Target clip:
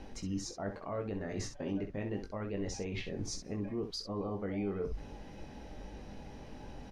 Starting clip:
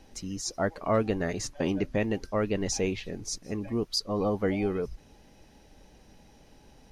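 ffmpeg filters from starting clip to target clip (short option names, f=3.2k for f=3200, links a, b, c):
-af "aemphasis=mode=reproduction:type=75kf,areverse,acompressor=threshold=-43dB:ratio=4,areverse,alimiter=level_in=13.5dB:limit=-24dB:level=0:latency=1:release=40,volume=-13.5dB,aecho=1:1:20|65:0.531|0.376,volume=7dB"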